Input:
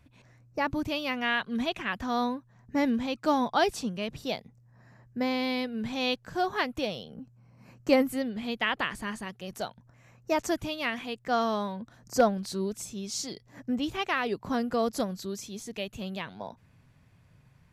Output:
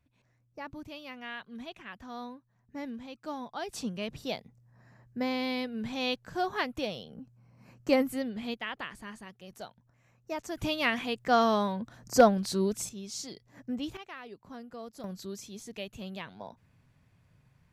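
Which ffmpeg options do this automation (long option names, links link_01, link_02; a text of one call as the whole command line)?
ffmpeg -i in.wav -af "asetnsamples=nb_out_samples=441:pad=0,asendcmd='3.73 volume volume -2.5dB;8.54 volume volume -9dB;10.57 volume volume 3dB;12.89 volume volume -5dB;13.97 volume volume -16dB;15.04 volume volume -4.5dB',volume=-13dB" out.wav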